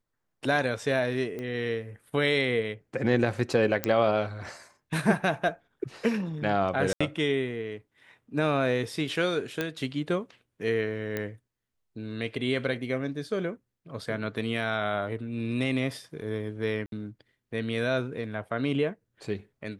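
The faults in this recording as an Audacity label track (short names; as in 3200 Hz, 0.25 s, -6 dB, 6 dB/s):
1.390000	1.390000	pop -24 dBFS
3.840000	3.840000	pop -10 dBFS
6.930000	7.000000	gap 75 ms
9.610000	9.610000	pop -14 dBFS
11.170000	11.170000	pop -17 dBFS
16.860000	16.920000	gap 62 ms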